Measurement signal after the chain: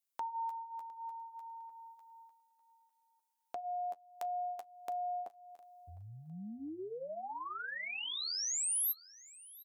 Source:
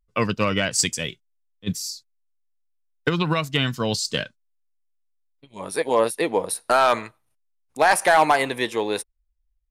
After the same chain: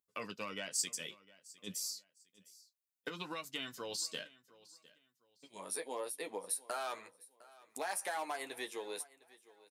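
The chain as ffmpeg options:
-filter_complex "[0:a]highpass=260,flanger=delay=9.8:depth=1.8:regen=-27:speed=0.61:shape=sinusoidal,acompressor=threshold=-47dB:ratio=2,highshelf=f=5.6k:g=12,asplit=2[a][b];[b]aecho=0:1:707|1414:0.0891|0.025[c];[a][c]amix=inputs=2:normalize=0,volume=-3.5dB"

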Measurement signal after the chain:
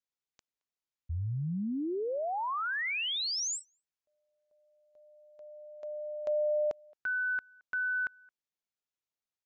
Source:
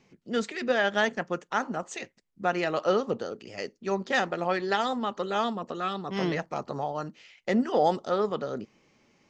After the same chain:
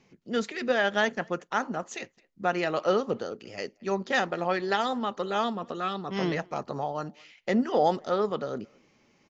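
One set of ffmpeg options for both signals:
-filter_complex "[0:a]asplit=2[a][b];[b]adelay=220,highpass=300,lowpass=3.4k,asoftclip=type=hard:threshold=-21.5dB,volume=-27dB[c];[a][c]amix=inputs=2:normalize=0,aresample=16000,aresample=44100"

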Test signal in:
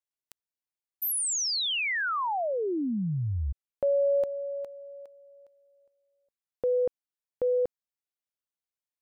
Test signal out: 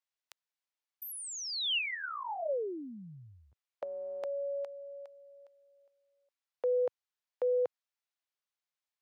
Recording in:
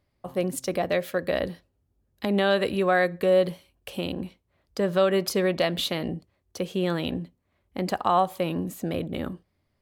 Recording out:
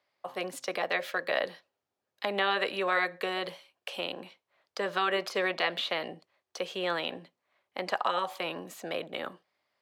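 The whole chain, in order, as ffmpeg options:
-filter_complex "[0:a]acrossover=split=540 6400:gain=0.0891 1 0.251[a][b][c];[a][b][c]amix=inputs=3:normalize=0,acrossover=split=110|1400|2800[d][e][f][g];[d]acrusher=bits=3:mix=0:aa=0.5[h];[g]acompressor=threshold=-45dB:ratio=6:attack=11:release=90:detection=peak[i];[h][e][f][i]amix=inputs=4:normalize=0,afftfilt=real='re*lt(hypot(re,im),0.316)':imag='im*lt(hypot(re,im),0.316)':win_size=1024:overlap=0.75,volume=3dB"

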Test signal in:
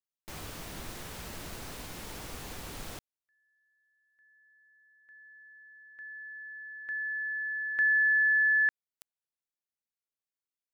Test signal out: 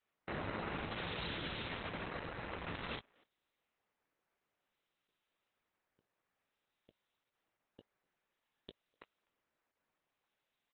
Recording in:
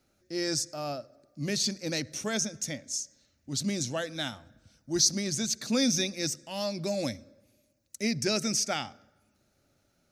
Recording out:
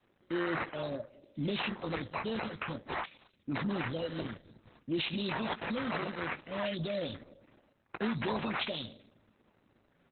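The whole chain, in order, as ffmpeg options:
-filter_complex "[0:a]asuperstop=centerf=1400:order=12:qfactor=0.5,equalizer=f=410:w=3.9:g=-2,acrusher=samples=9:mix=1:aa=0.000001:lfo=1:lforange=9:lforate=0.54,asplit=2[a][b];[b]adelay=18,volume=-10.5dB[c];[a][c]amix=inputs=2:normalize=0,acompressor=threshold=-32dB:ratio=20:attack=0.2:release=56:knee=6:detection=rms,asplit=2[d][e];[e]adelay=250,highpass=300,lowpass=3.4k,asoftclip=type=hard:threshold=-37.5dB,volume=-28dB[f];[d][f]amix=inputs=2:normalize=0,aresample=11025,aresample=44100,highpass=f=190:p=1,adynamicequalizer=threshold=0.00178:dfrequency=290:dqfactor=0.87:tfrequency=290:tqfactor=0.87:attack=5:release=100:ratio=0.375:range=3:mode=cutabove:tftype=bell,volume=8.5dB" -ar 48000 -c:a libopus -b:a 8k

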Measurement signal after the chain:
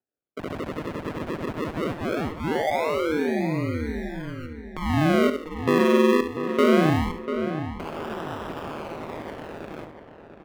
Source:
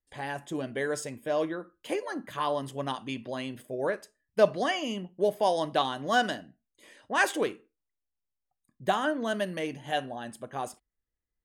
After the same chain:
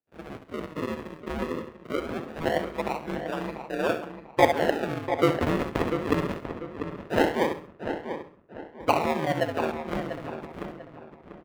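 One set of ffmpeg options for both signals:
-filter_complex "[0:a]acrusher=samples=40:mix=1:aa=0.000001:lfo=1:lforange=40:lforate=0.21,dynaudnorm=f=330:g=11:m=5dB,acrossover=split=160 3100:gain=0.0708 1 0.2[a][b][c];[a][b][c]amix=inputs=3:normalize=0,asplit=2[d][e];[e]aecho=0:1:67|134|201:0.316|0.098|0.0304[f];[d][f]amix=inputs=2:normalize=0,aeval=exprs='val(0)*sin(2*PI*78*n/s)':c=same,asplit=2[g][h];[h]adelay=693,lowpass=f=2.5k:p=1,volume=-8.5dB,asplit=2[i][j];[j]adelay=693,lowpass=f=2.5k:p=1,volume=0.34,asplit=2[k][l];[l]adelay=693,lowpass=f=2.5k:p=1,volume=0.34,asplit=2[m][n];[n]adelay=693,lowpass=f=2.5k:p=1,volume=0.34[o];[i][k][m][o]amix=inputs=4:normalize=0[p];[g][p]amix=inputs=2:normalize=0,volume=2dB"

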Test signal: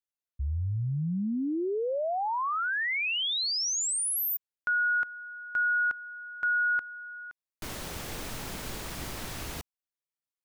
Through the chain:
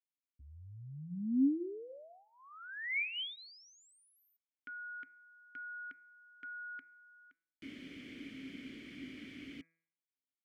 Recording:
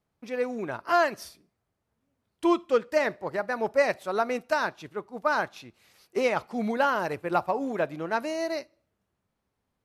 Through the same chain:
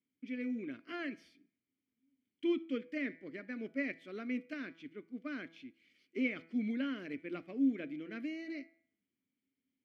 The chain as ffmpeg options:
-filter_complex "[0:a]bandreject=f=3.8k:w=13,acrossover=split=2900[a][b];[b]acompressor=threshold=-45dB:ratio=4:attack=1:release=60[c];[a][c]amix=inputs=2:normalize=0,asplit=3[d][e][f];[d]bandpass=f=270:t=q:w=8,volume=0dB[g];[e]bandpass=f=2.29k:t=q:w=8,volume=-6dB[h];[f]bandpass=f=3.01k:t=q:w=8,volume=-9dB[i];[g][h][i]amix=inputs=3:normalize=0,bandreject=f=164.5:t=h:w=4,bandreject=f=329:t=h:w=4,bandreject=f=493.5:t=h:w=4,bandreject=f=658:t=h:w=4,bandreject=f=822.5:t=h:w=4,bandreject=f=987:t=h:w=4,bandreject=f=1.1515k:t=h:w=4,bandreject=f=1.316k:t=h:w=4,bandreject=f=1.4805k:t=h:w=4,bandreject=f=1.645k:t=h:w=4,bandreject=f=1.8095k:t=h:w=4,bandreject=f=1.974k:t=h:w=4,bandreject=f=2.1385k:t=h:w=4,bandreject=f=2.303k:t=h:w=4,bandreject=f=2.4675k:t=h:w=4,volume=4dB"

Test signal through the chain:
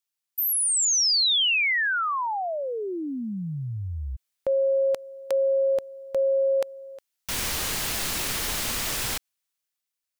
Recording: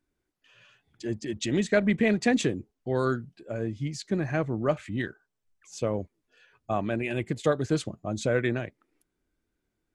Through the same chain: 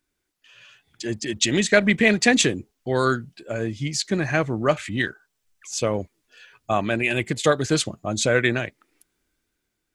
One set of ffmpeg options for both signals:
-af "tiltshelf=f=1.3k:g=-5.5,dynaudnorm=f=150:g=11:m=5dB,volume=4dB"

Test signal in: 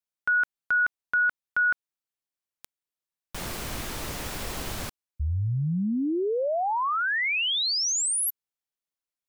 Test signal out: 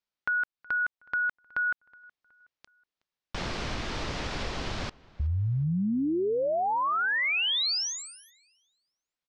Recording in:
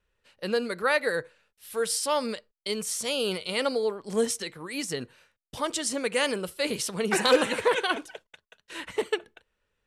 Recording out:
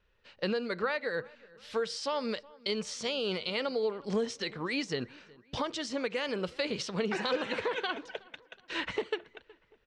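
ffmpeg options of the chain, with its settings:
-filter_complex "[0:a]alimiter=limit=-21.5dB:level=0:latency=1:release=328,acompressor=threshold=-29dB:ratio=6:attack=4.6:release=766:knee=1:detection=rms,lowpass=f=5.4k:w=0.5412,lowpass=f=5.4k:w=1.3066,asplit=2[a][b];[b]adelay=370,lowpass=f=3.1k:p=1,volume=-23dB,asplit=2[c][d];[d]adelay=370,lowpass=f=3.1k:p=1,volume=0.44,asplit=2[e][f];[f]adelay=370,lowpass=f=3.1k:p=1,volume=0.44[g];[a][c][e][g]amix=inputs=4:normalize=0,volume=4dB"

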